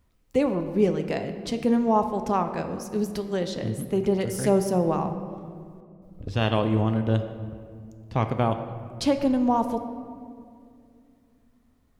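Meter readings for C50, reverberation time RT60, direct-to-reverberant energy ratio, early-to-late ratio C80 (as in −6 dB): 9.0 dB, 2.4 s, 7.0 dB, 10.0 dB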